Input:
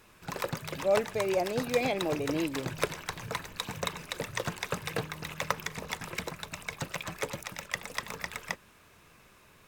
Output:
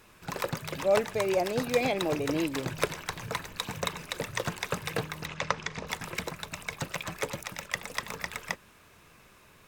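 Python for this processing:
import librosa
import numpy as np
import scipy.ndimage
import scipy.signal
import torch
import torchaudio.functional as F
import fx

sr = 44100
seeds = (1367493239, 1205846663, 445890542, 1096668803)

y = fx.lowpass(x, sr, hz=6600.0, slope=24, at=(5.26, 5.87))
y = F.gain(torch.from_numpy(y), 1.5).numpy()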